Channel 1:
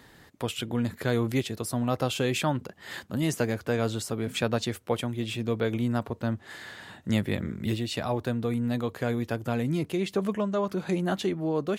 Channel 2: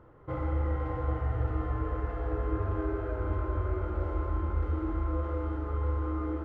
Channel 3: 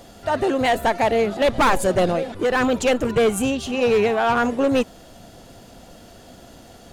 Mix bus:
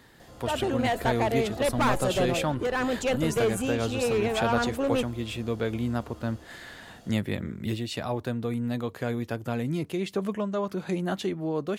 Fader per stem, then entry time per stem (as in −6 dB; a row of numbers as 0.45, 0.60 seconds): −1.5, −16.5, −8.0 decibels; 0.00, 0.00, 0.20 seconds